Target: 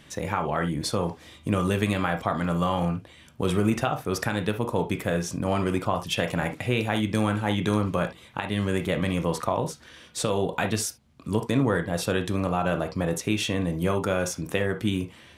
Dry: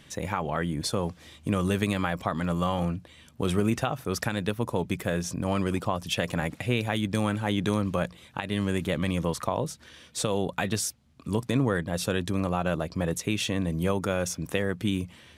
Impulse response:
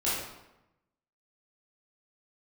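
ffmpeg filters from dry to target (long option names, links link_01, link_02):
-filter_complex "[0:a]asplit=2[link_01][link_02];[link_02]bass=frequency=250:gain=-8,treble=frequency=4000:gain=-15[link_03];[1:a]atrim=start_sample=2205,atrim=end_sample=3528[link_04];[link_03][link_04]afir=irnorm=-1:irlink=0,volume=-10.5dB[link_05];[link_01][link_05]amix=inputs=2:normalize=0"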